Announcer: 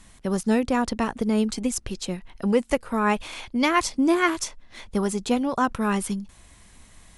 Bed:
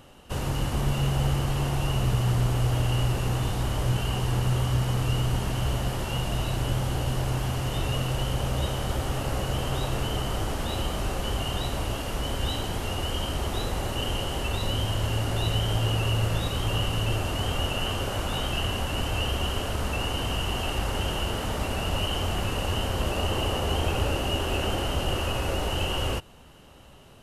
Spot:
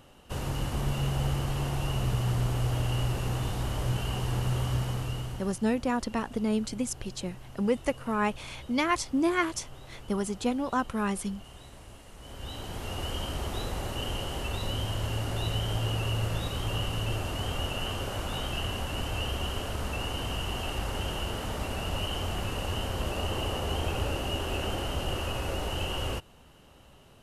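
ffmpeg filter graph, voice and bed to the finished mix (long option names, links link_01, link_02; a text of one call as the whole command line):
ffmpeg -i stem1.wav -i stem2.wav -filter_complex "[0:a]adelay=5150,volume=-5.5dB[link_01];[1:a]volume=11.5dB,afade=type=out:start_time=4.75:duration=0.84:silence=0.158489,afade=type=in:start_time=12.17:duration=0.87:silence=0.16788[link_02];[link_01][link_02]amix=inputs=2:normalize=0" out.wav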